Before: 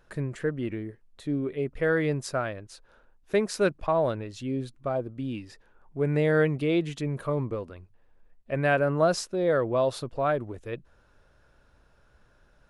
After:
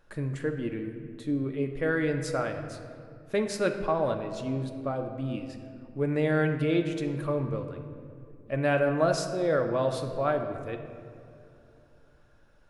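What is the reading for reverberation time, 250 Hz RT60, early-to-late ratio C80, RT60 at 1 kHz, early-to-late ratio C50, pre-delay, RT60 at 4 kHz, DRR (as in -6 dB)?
2.6 s, 3.5 s, 9.0 dB, 2.3 s, 7.5 dB, 4 ms, 1.3 s, 4.5 dB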